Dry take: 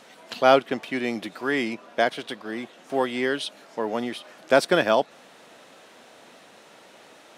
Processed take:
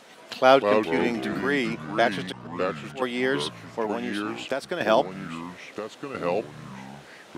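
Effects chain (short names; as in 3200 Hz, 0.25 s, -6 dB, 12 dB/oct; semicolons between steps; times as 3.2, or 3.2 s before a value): 2.32–3.02 auto swell 0.3 s; 3.85–4.81 compressor 6:1, threshold -26 dBFS, peak gain reduction 13.5 dB; echoes that change speed 91 ms, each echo -4 st, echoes 3, each echo -6 dB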